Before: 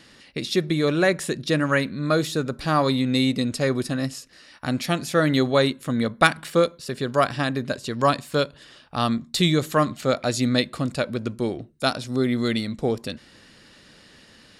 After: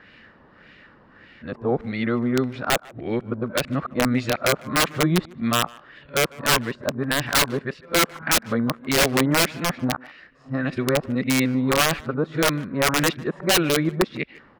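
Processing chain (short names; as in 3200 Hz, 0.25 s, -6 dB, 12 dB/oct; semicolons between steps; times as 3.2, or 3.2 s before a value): whole clip reversed; LFO low-pass sine 1.7 Hz 990–2400 Hz; wrapped overs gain 11 dB; speakerphone echo 0.15 s, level -19 dB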